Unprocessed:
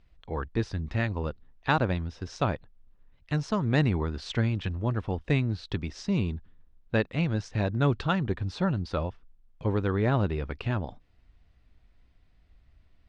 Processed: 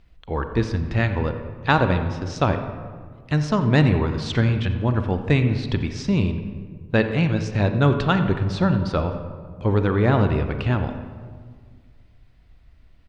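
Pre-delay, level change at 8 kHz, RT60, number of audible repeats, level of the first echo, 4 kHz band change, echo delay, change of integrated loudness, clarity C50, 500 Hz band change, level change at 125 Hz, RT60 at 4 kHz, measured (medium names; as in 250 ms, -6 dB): 32 ms, no reading, 1.8 s, 1, -16.5 dB, +7.0 dB, 87 ms, +7.5 dB, 8.0 dB, +7.5 dB, +7.5 dB, 0.95 s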